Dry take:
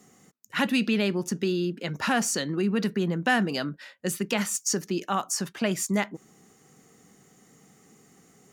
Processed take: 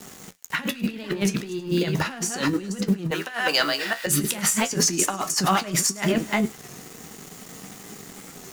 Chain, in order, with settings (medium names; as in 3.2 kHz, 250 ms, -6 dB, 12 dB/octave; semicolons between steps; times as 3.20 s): chunks repeated in reverse 281 ms, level -7 dB; bit crusher 9-bit; 3.11–4.07 s: high-pass 740 Hz 12 dB/octave; compressor with a negative ratio -32 dBFS, ratio -0.5; on a send: feedback echo behind a high-pass 104 ms, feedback 70%, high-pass 1.5 kHz, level -21.5 dB; on the sum: flange 0.38 Hz, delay 9.8 ms, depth 5 ms, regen +57%; waveshaping leveller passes 1; warped record 33 1/3 rpm, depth 100 cents; trim +9 dB